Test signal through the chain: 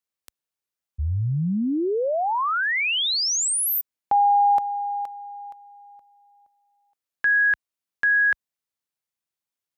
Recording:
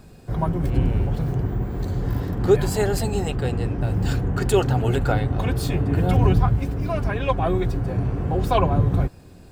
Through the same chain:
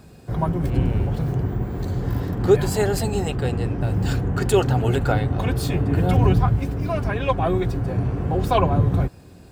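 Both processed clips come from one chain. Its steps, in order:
high-pass filter 50 Hz 12 dB per octave
level +1 dB

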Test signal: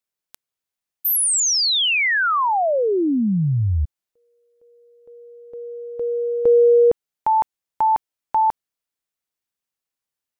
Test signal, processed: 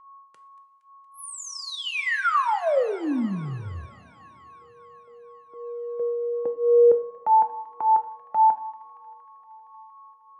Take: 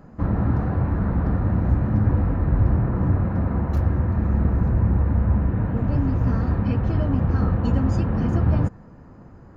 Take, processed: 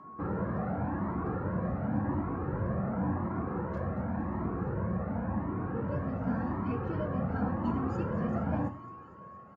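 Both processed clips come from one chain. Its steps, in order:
high-pass filter 100 Hz 12 dB per octave
three-way crossover with the lows and the highs turned down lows −13 dB, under 160 Hz, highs −15 dB, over 2,200 Hz
on a send: delay with a high-pass on its return 233 ms, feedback 75%, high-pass 1,600 Hz, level −15.5 dB
on the sum: steady tone 1,100 Hz −46 dBFS
downsampling to 22,050 Hz
coupled-rooms reverb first 0.41 s, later 3.1 s, from −18 dB, DRR 7.5 dB
flanger whose copies keep moving one way rising 0.91 Hz

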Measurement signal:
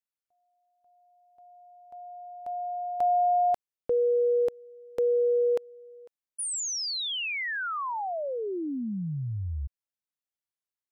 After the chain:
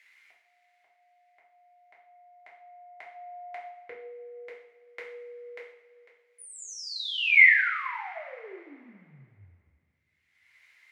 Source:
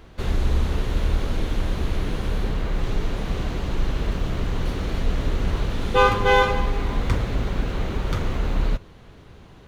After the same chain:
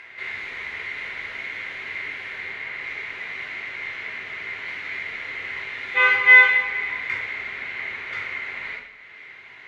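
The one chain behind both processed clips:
in parallel at 0 dB: upward compression, threshold −23 dBFS
on the sum: resonant band-pass 2,100 Hz, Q 11
coupled-rooms reverb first 0.55 s, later 2.5 s, from −18 dB, DRR −5 dB
level +6 dB

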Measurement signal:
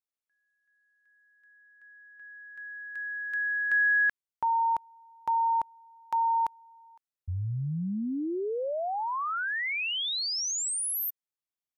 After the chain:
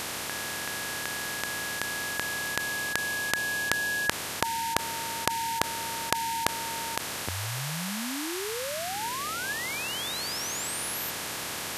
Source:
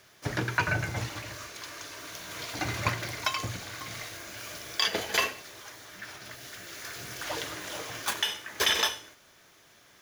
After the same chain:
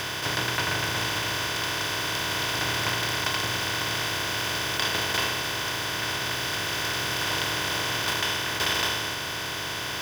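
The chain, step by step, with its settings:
compressor on every frequency bin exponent 0.2
level −7 dB

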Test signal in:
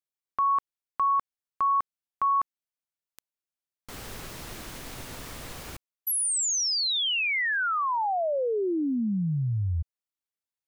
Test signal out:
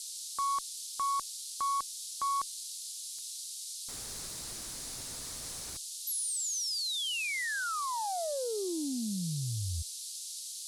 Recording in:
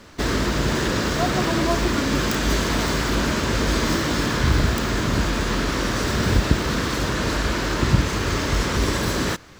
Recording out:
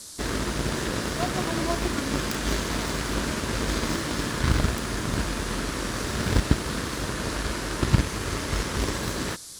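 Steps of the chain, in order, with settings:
harmonic generator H 7 −22 dB, 8 −42 dB, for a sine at −1.5 dBFS
noise in a band 3,800–11,000 Hz −41 dBFS
level −1.5 dB

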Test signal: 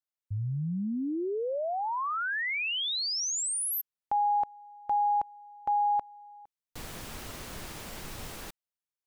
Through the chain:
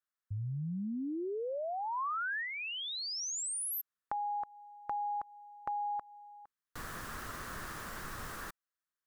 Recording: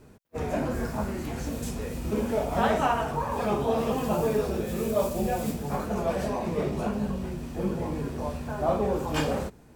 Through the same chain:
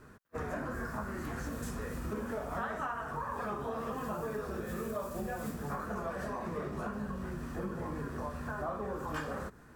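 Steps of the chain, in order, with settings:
flat-topped bell 1,400 Hz +10.5 dB 1 octave
downward compressor 5 to 1, threshold −31 dBFS
dynamic equaliser 3,100 Hz, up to −3 dB, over −50 dBFS, Q 0.76
level −3.5 dB

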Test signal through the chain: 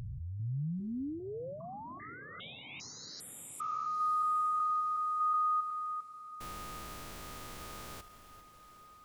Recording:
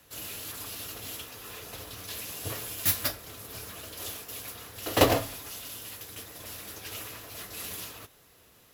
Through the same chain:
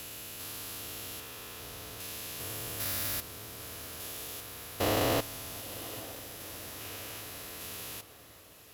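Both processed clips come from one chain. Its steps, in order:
spectrum averaged block by block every 400 ms
feedback delay with all-pass diffusion 920 ms, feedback 51%, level −15.5 dB

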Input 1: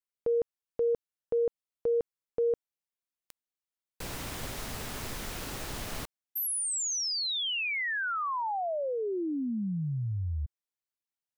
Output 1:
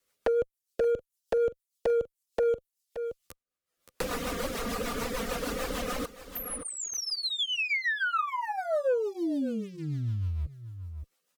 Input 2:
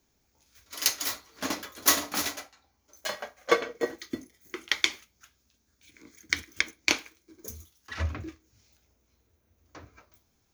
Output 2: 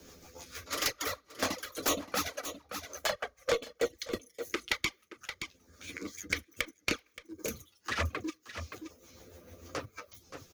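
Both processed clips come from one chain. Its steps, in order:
reverb reduction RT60 0.62 s
dynamic equaliser 8,900 Hz, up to −4 dB, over −48 dBFS, Q 1.7
in parallel at −0.5 dB: downward compressor 5 to 1, threshold −38 dBFS
on the sum: leveller curve on the samples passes 1
asymmetric clip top −11.5 dBFS
hollow resonant body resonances 510/1,200 Hz, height 9 dB, ringing for 30 ms
flanger swept by the level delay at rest 11.9 ms, full sweep at −16 dBFS
rotating-speaker cabinet horn 6.7 Hz
soft clipping −15.5 dBFS
single-tap delay 573 ms −18 dB
multiband upward and downward compressor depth 70%

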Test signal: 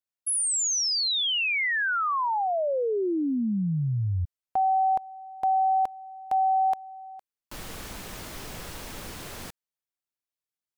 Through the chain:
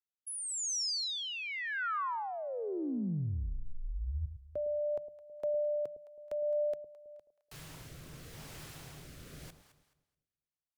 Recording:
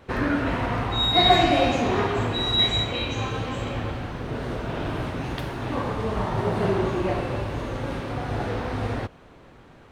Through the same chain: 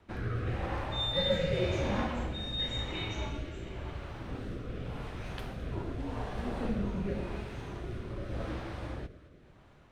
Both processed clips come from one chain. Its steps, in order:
delay that swaps between a low-pass and a high-pass 107 ms, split 810 Hz, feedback 57%, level −10.5 dB
frequency shifter −170 Hz
rotating-speaker cabinet horn 0.9 Hz
level −8 dB

